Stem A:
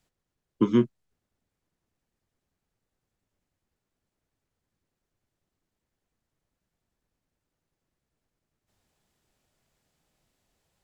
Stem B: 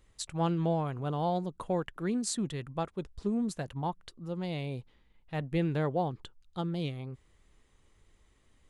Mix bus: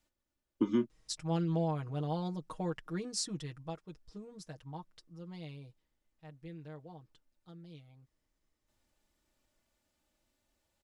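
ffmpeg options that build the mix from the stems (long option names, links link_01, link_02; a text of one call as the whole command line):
ffmpeg -i stem1.wav -i stem2.wav -filter_complex "[0:a]aecho=1:1:3.4:0.65,acompressor=threshold=-22dB:ratio=2.5,volume=-5.5dB[link_01];[1:a]equalizer=frequency=5300:width_type=o:width=0.38:gain=12,aecho=1:1:6.4:0.86,adelay=900,volume=-7dB,afade=type=out:start_time=3.14:duration=0.79:silence=0.421697,afade=type=out:start_time=5.47:duration=0.4:silence=0.398107[link_02];[link_01][link_02]amix=inputs=2:normalize=0" out.wav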